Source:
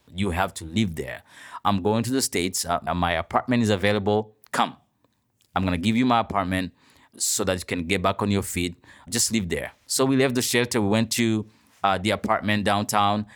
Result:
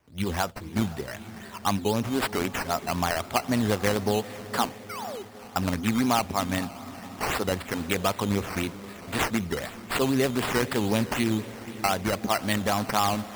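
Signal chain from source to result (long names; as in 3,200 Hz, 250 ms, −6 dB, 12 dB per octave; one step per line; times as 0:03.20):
feedback delay with all-pass diffusion 478 ms, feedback 61%, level −15 dB
sound drawn into the spectrogram fall, 0:04.89–0:05.23, 360–1,500 Hz −33 dBFS
sample-and-hold swept by an LFO 10×, swing 60% 3.9 Hz
level −3.5 dB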